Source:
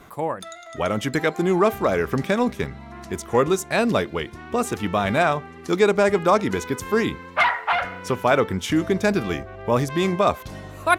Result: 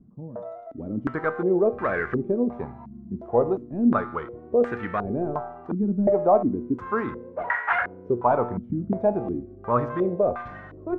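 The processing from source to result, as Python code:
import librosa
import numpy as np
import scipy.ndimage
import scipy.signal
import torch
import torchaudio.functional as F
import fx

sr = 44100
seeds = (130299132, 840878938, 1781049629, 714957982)

y = fx.cvsd(x, sr, bps=64000)
y = fx.comb_fb(y, sr, f0_hz=120.0, decay_s=0.84, harmonics='all', damping=0.0, mix_pct=70)
y = fx.filter_held_lowpass(y, sr, hz=2.8, low_hz=210.0, high_hz=1700.0)
y = F.gain(torch.from_numpy(y), 2.0).numpy()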